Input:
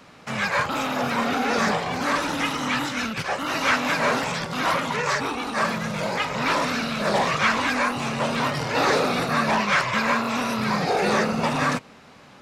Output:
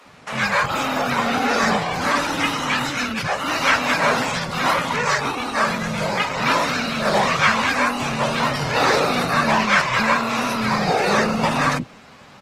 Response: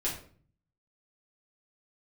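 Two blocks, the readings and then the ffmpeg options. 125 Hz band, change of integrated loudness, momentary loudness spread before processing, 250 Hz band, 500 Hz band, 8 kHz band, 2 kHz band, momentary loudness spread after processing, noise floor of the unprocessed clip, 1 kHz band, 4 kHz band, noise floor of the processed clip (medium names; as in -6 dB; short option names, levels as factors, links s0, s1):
+3.5 dB, +3.5 dB, 5 LU, +2.0 dB, +3.0 dB, +4.0 dB, +4.0 dB, 6 LU, -48 dBFS, +4.0 dB, +4.0 dB, -45 dBFS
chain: -filter_complex "[0:a]aresample=32000,aresample=44100,acrossover=split=340[s0][s1];[s0]adelay=50[s2];[s2][s1]amix=inputs=2:normalize=0,volume=1.58" -ar 48000 -c:a libopus -b:a 20k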